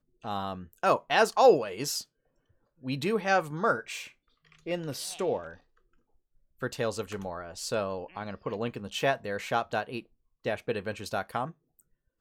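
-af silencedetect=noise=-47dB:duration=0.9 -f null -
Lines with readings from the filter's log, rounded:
silence_start: 5.56
silence_end: 6.61 | silence_duration: 1.05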